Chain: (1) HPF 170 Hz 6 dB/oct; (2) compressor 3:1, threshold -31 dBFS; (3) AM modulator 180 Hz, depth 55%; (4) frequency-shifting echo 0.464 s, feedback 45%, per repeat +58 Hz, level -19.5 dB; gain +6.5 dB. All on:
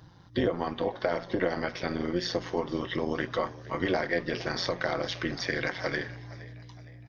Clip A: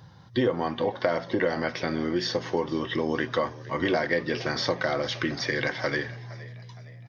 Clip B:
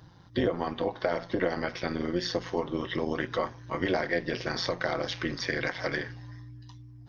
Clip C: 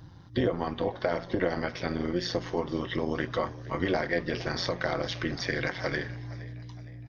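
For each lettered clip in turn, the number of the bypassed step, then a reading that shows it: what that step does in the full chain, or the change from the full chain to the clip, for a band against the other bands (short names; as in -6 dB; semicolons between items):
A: 3, loudness change +3.0 LU; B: 4, echo-to-direct -18.5 dB to none; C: 1, 125 Hz band +3.5 dB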